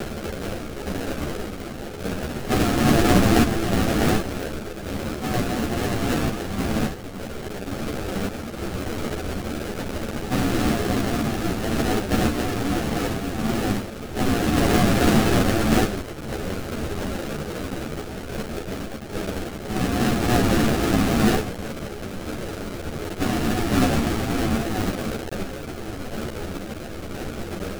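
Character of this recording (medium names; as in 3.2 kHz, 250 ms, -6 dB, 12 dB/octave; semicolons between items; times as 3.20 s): a quantiser's noise floor 6-bit, dither triangular; random-step tremolo 3.5 Hz; aliases and images of a low sample rate 1 kHz, jitter 20%; a shimmering, thickened sound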